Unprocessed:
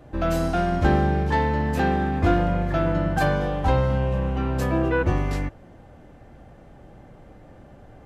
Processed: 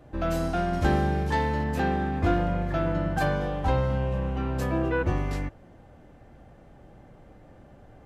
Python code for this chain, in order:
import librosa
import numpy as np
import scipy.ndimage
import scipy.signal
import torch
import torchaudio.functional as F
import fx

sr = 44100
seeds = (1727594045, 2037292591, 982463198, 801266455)

y = fx.high_shelf(x, sr, hz=5400.0, db=10.5, at=(0.73, 1.64))
y = F.gain(torch.from_numpy(y), -4.0).numpy()